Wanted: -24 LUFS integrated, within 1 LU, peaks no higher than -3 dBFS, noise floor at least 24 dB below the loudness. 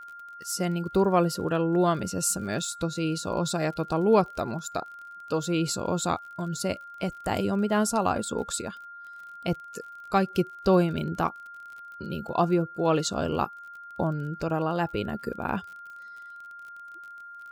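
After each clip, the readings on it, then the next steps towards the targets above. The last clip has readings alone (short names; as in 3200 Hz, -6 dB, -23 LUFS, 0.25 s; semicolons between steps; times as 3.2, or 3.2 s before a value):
ticks 37/s; steady tone 1400 Hz; tone level -41 dBFS; loudness -27.5 LUFS; peak -8.5 dBFS; loudness target -24.0 LUFS
-> de-click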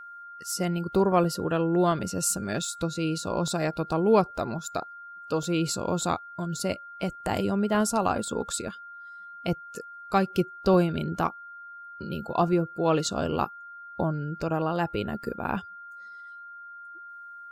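ticks 0.11/s; steady tone 1400 Hz; tone level -41 dBFS
-> notch 1400 Hz, Q 30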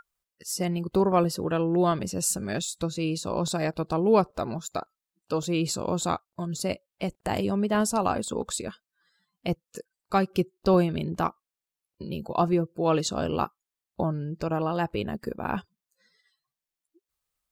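steady tone none; loudness -27.5 LUFS; peak -9.0 dBFS; loudness target -24.0 LUFS
-> gain +3.5 dB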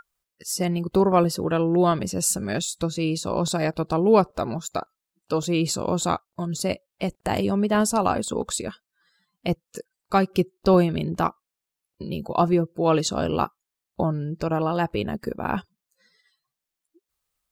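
loudness -24.0 LUFS; peak -5.5 dBFS; noise floor -86 dBFS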